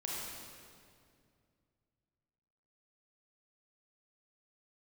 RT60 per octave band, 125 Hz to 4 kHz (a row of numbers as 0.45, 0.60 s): 3.3, 2.8, 2.5, 2.1, 1.9, 1.8 s